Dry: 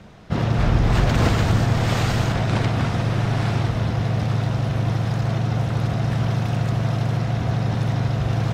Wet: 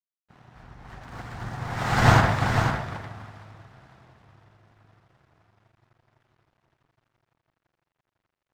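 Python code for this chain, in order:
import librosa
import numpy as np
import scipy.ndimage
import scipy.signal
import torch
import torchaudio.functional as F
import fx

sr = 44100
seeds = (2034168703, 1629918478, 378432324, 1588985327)

y = fx.doppler_pass(x, sr, speed_mps=19, closest_m=2.2, pass_at_s=2.13)
y = fx.band_shelf(y, sr, hz=1200.0, db=8.0, octaves=1.7)
y = np.sign(y) * np.maximum(np.abs(y) - 10.0 ** (-48.5 / 20.0), 0.0)
y = y + 10.0 ** (-5.0 / 20.0) * np.pad(y, (int(499 * sr / 1000.0), 0))[:len(y)]
y = fx.upward_expand(y, sr, threshold_db=-40.0, expansion=1.5)
y = y * 10.0 ** (5.0 / 20.0)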